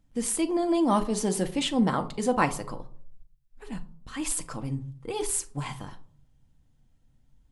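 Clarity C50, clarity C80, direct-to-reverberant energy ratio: 16.5 dB, 21.0 dB, 6.0 dB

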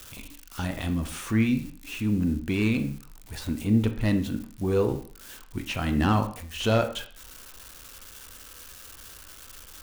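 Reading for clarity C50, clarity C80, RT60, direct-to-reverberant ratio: 11.5 dB, 15.0 dB, 0.50 s, 7.5 dB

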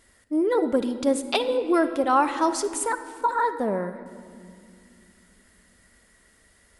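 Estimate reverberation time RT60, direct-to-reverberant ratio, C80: 2.4 s, 9.0 dB, 12.5 dB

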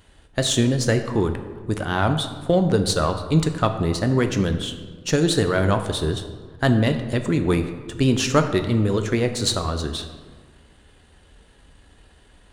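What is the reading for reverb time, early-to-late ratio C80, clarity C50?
1.6 s, 11.0 dB, 9.5 dB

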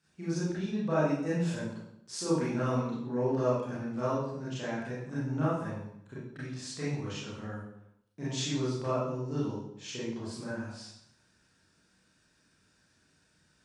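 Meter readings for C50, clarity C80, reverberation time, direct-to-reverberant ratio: -0.5 dB, 3.5 dB, 0.75 s, -10.0 dB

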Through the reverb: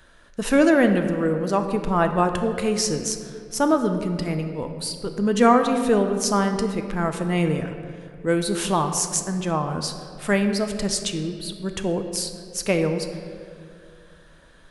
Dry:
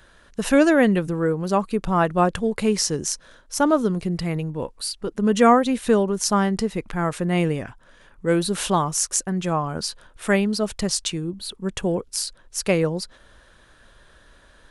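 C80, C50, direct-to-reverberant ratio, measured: 9.0 dB, 7.5 dB, 6.0 dB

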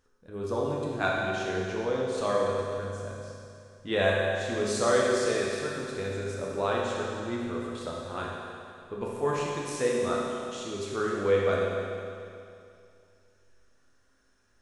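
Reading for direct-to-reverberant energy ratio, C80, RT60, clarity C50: -4.5 dB, 0.5 dB, 2.5 s, -1.0 dB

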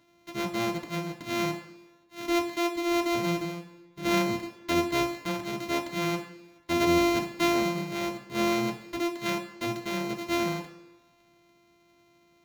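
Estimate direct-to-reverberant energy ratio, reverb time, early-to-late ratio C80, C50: 1.5 dB, 1.1 s, 12.0 dB, 10.0 dB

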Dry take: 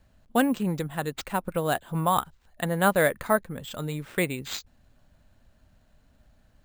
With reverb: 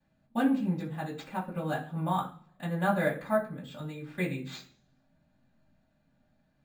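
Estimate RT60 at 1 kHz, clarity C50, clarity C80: 0.45 s, 10.0 dB, 15.0 dB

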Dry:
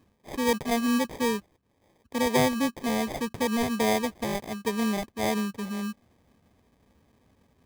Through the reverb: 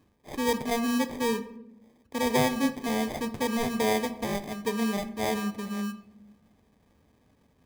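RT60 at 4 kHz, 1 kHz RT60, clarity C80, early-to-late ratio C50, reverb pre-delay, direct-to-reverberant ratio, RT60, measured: 0.50 s, 0.75 s, 17.0 dB, 14.0 dB, 7 ms, 10.0 dB, 0.95 s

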